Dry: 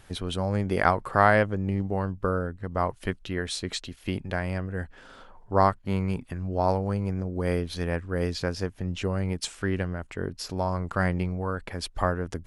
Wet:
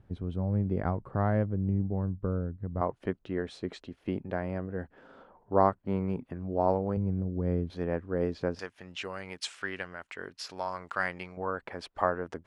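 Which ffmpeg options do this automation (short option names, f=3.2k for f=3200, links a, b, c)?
-af "asetnsamples=n=441:p=0,asendcmd='2.81 bandpass f 390;6.97 bandpass f 150;7.7 bandpass f 400;8.59 bandpass f 2200;11.37 bandpass f 820',bandpass=f=120:t=q:w=0.59:csg=0"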